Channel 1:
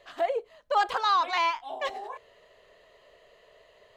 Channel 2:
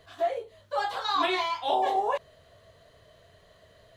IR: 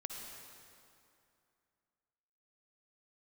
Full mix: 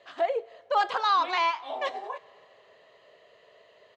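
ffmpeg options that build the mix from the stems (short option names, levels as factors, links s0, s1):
-filter_complex "[0:a]volume=0.944,asplit=2[s0][s1];[s1]volume=0.141[s2];[1:a]adelay=4.1,volume=0.224[s3];[2:a]atrim=start_sample=2205[s4];[s2][s4]afir=irnorm=-1:irlink=0[s5];[s0][s3][s5]amix=inputs=3:normalize=0,highpass=170,lowpass=5900"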